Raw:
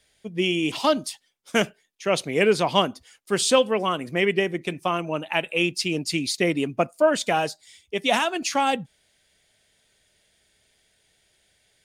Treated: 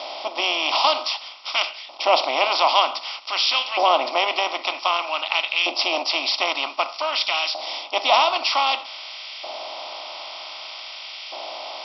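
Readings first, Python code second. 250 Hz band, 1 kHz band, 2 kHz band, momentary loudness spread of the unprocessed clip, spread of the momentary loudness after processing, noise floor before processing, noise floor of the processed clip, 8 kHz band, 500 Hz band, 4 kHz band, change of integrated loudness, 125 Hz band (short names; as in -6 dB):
-13.5 dB, +6.0 dB, +3.0 dB, 9 LU, 15 LU, -67 dBFS, -38 dBFS, -8.5 dB, -3.0 dB, +8.0 dB, +2.5 dB, under -40 dB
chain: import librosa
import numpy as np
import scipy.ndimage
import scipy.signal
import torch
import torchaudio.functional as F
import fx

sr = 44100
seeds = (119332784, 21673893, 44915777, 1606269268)

y = fx.bin_compress(x, sr, power=0.4)
y = fx.filter_lfo_highpass(y, sr, shape='saw_up', hz=0.53, low_hz=650.0, high_hz=1900.0, q=1.2)
y = fx.brickwall_bandpass(y, sr, low_hz=230.0, high_hz=5700.0)
y = fx.fixed_phaser(y, sr, hz=450.0, stages=6)
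y = y * 10.0 ** (3.0 / 20.0)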